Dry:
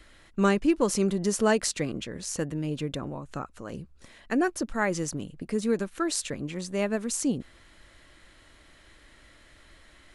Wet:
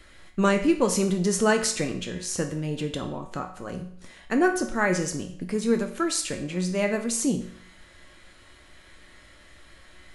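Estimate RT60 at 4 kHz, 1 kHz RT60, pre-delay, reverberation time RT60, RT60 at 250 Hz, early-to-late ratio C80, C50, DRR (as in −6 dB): 0.55 s, 0.60 s, 5 ms, 0.60 s, 0.60 s, 12.5 dB, 9.5 dB, 4.0 dB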